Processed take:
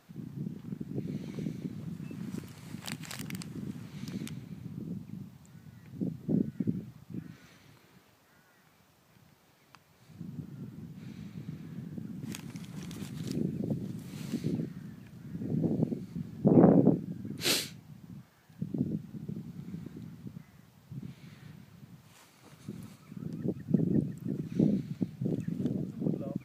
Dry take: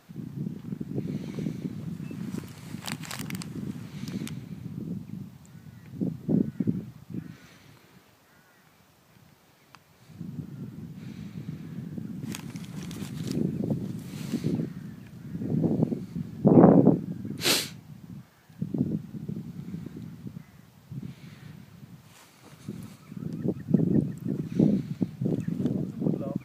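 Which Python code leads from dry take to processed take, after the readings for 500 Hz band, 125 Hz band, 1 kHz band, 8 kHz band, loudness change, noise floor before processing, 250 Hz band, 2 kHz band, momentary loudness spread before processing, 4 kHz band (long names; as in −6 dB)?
−5.0 dB, −4.5 dB, −7.0 dB, −4.5 dB, −4.5 dB, −59 dBFS, −4.5 dB, −5.0 dB, 19 LU, −4.5 dB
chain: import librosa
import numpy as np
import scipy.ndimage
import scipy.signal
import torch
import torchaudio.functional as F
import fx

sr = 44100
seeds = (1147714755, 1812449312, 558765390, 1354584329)

y = fx.dynamic_eq(x, sr, hz=1000.0, q=1.8, threshold_db=-49.0, ratio=4.0, max_db=-5)
y = F.gain(torch.from_numpy(y), -4.5).numpy()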